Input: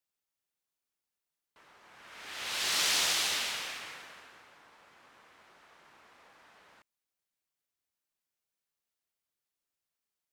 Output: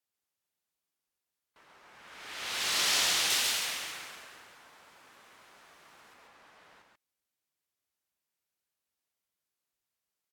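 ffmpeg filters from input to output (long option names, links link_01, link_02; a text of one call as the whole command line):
ffmpeg -i in.wav -filter_complex "[0:a]asettb=1/sr,asplit=3[link_01][link_02][link_03];[link_01]atrim=end=3.304[link_04];[link_02]atrim=start=3.3:end=6.14,asetpts=PTS-STARTPTS,afade=type=in:duration=0.004:curve=qsin,afade=type=out:start_time=2.836:duration=0.004:curve=qsin,highshelf=frequency=5500:gain=9.5[link_05];[link_03]atrim=start=6.136[link_06];[link_04][link_05]acrossfade=duration=0.004:curve1=hsin:curve2=qsin[link_07];[link_07][link_06]acrossfade=duration=0.004:curve1=qsin:curve2=hsin,aecho=1:1:136:0.668" -ar 48000 -c:a libvorbis -b:a 128k out.ogg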